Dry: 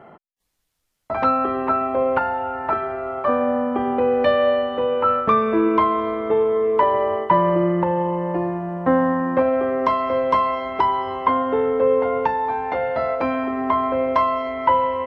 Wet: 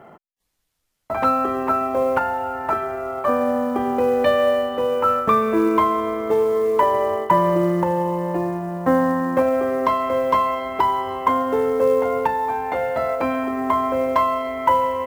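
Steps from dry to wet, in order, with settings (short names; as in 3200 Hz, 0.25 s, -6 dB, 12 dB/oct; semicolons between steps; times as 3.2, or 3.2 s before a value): short-mantissa float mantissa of 4-bit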